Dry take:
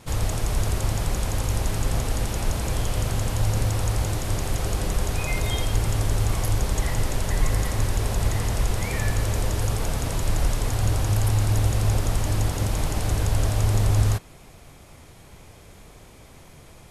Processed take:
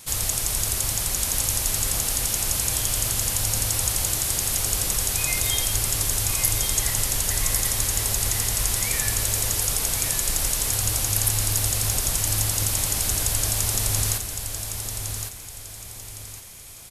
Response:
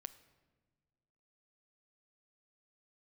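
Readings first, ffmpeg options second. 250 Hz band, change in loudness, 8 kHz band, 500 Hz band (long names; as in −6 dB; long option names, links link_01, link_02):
−6.5 dB, +3.5 dB, +13.0 dB, −5.5 dB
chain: -af "aecho=1:1:1111|2222|3333|4444:0.447|0.156|0.0547|0.0192,crystalizer=i=9:c=0,volume=-8dB"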